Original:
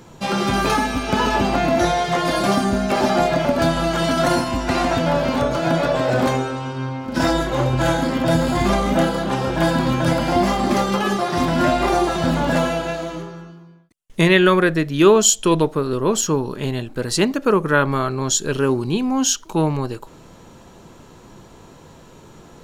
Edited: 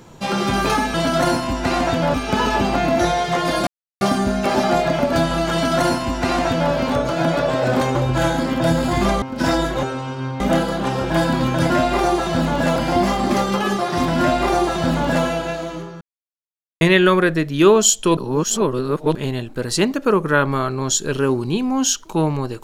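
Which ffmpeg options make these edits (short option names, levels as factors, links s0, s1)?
-filter_complex "[0:a]asplit=14[s0][s1][s2][s3][s4][s5][s6][s7][s8][s9][s10][s11][s12][s13];[s0]atrim=end=0.942[s14];[s1]atrim=start=3.978:end=5.182[s15];[s2]atrim=start=0.938:end=2.47,asetpts=PTS-STARTPTS,afade=t=out:st=1.528:d=0.004:c=hsin,apad=pad_dur=0.34[s16];[s3]atrim=start=2.47:end=6.412,asetpts=PTS-STARTPTS,afade=t=in:d=0.004:c=hsin[s17];[s4]atrim=start=7.588:end=8.862[s18];[s5]atrim=start=6.978:end=7.592[s19];[s6]atrim=start=6.408:end=6.982[s20];[s7]atrim=start=8.858:end=10.162[s21];[s8]atrim=start=11.588:end=12.652[s22];[s9]atrim=start=10.158:end=13.41,asetpts=PTS-STARTPTS,afade=t=out:st=3.248:d=0.004:c=hsin[s23];[s10]atrim=start=13.41:end=14.21,asetpts=PTS-STARTPTS,volume=0[s24];[s11]atrim=start=14.21:end=15.572,asetpts=PTS-STARTPTS,afade=t=in:d=0.004:c=hsin[s25];[s12]atrim=start=15.568:end=16.552,asetpts=PTS-STARTPTS,areverse[s26];[s13]atrim=start=16.548[s27];[s14][s15]acrossfade=d=0.004:c1=hsin:c2=hsin[s28];[s16][s17]concat=n=2:v=0:a=1[s29];[s28][s29]acrossfade=d=0.004:c1=hsin:c2=hsin[s30];[s30][s18]acrossfade=d=0.004:c1=hsin:c2=hsin[s31];[s31][s19]acrossfade=d=0.004:c1=hsin:c2=hsin[s32];[s32][s20]acrossfade=d=0.004:c1=hsin:c2=hsin[s33];[s33][s21]acrossfade=d=0.004:c1=hsin:c2=hsin[s34];[s34][s22]acrossfade=d=0.004:c1=hsin:c2=hsin[s35];[s23][s24][s25]concat=n=3:v=0:a=1[s36];[s35][s36]acrossfade=d=0.004:c1=hsin:c2=hsin[s37];[s37][s26]acrossfade=d=0.004:c1=hsin:c2=hsin[s38];[s38][s27]acrossfade=d=0.004:c1=hsin:c2=hsin"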